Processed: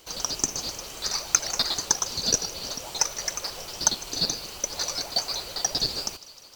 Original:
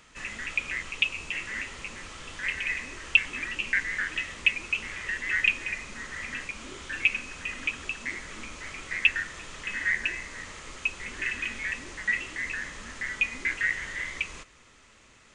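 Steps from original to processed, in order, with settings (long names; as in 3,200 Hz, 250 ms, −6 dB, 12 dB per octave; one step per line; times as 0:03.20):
low shelf with overshoot 120 Hz −7.5 dB, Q 1.5
in parallel at −9 dB: sample-and-hold swept by an LFO 38×, swing 60% 0.23 Hz
on the sum: feedback echo with a high-pass in the loop 362 ms, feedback 73%, high-pass 420 Hz, level −19 dB
wrong playback speed 33 rpm record played at 78 rpm
level +2 dB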